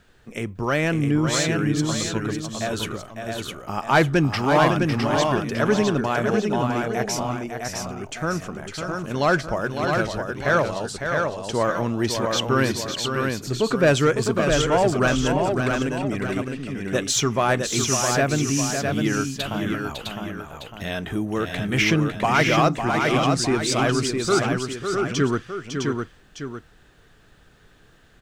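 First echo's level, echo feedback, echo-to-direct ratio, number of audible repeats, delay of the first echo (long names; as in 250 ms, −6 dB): −7.0 dB, repeats not evenly spaced, −2.0 dB, 3, 554 ms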